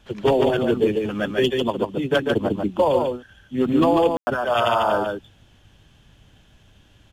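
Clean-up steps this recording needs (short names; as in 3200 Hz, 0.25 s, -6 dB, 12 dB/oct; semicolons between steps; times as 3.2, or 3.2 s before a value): room tone fill 4.17–4.27; inverse comb 0.145 s -4 dB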